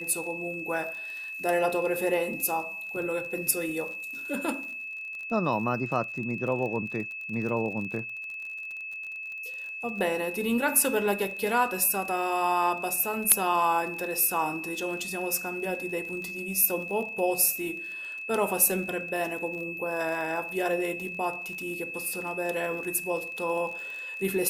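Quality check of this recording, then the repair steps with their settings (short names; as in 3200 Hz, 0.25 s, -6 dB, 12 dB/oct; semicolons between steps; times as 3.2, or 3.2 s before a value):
crackle 36/s -36 dBFS
tone 2600 Hz -35 dBFS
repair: de-click; notch 2600 Hz, Q 30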